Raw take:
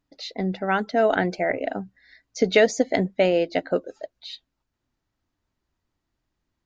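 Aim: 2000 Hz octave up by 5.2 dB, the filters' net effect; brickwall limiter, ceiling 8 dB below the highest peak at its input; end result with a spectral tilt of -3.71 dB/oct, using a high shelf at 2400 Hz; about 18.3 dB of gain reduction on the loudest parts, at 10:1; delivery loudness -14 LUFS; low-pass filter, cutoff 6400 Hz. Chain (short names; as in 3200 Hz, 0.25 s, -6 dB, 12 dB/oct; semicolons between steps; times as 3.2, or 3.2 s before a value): LPF 6400 Hz; bell 2000 Hz +4 dB; high shelf 2400 Hz +5 dB; compressor 10:1, threshold -29 dBFS; gain +22.5 dB; limiter -2 dBFS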